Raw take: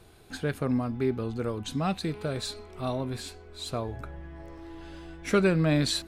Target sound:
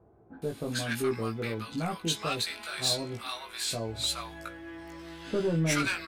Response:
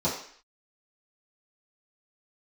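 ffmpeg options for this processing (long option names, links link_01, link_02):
-filter_complex "[0:a]highpass=74,tiltshelf=frequency=1100:gain=-7,asoftclip=type=tanh:threshold=-23dB,asplit=2[link_01][link_02];[link_02]adelay=18,volume=-3dB[link_03];[link_01][link_03]amix=inputs=2:normalize=0,acrossover=split=860[link_04][link_05];[link_05]adelay=420[link_06];[link_04][link_06]amix=inputs=2:normalize=0,volume=2dB"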